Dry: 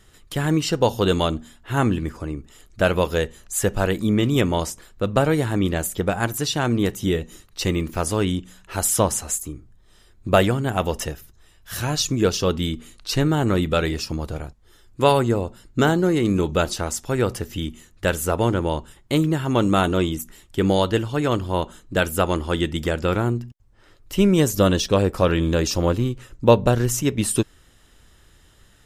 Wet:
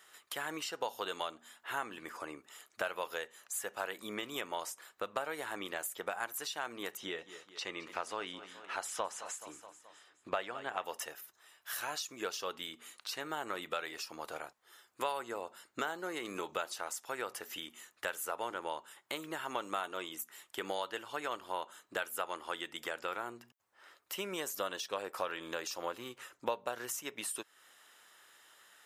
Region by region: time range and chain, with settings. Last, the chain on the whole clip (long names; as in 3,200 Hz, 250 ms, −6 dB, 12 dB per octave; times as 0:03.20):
0:06.97–0:10.84: low-pass filter 5,200 Hz + repeating echo 213 ms, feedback 53%, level −19 dB
whole clip: high-pass filter 930 Hz 12 dB per octave; downward compressor 3 to 1, threshold −38 dBFS; parametric band 5,300 Hz −7 dB 2.6 octaves; level +2.5 dB